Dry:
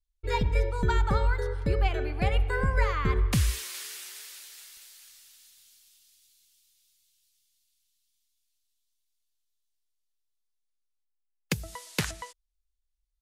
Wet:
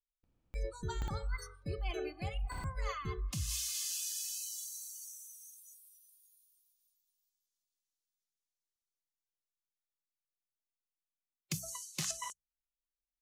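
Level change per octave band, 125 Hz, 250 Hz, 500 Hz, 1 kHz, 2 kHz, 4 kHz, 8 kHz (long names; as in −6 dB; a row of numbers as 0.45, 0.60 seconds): −13.0, −12.5, −12.5, −13.0, −14.0, −5.0, +2.0 decibels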